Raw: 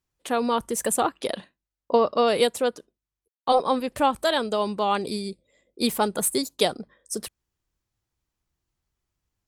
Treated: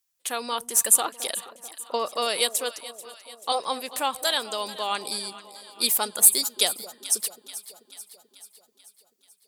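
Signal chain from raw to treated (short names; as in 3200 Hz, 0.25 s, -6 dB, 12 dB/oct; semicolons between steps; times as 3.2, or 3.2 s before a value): tilt +4.5 dB/oct; on a send: echo with dull and thin repeats by turns 0.218 s, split 820 Hz, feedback 75%, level -13.5 dB; on the sum: gain -4.5 dB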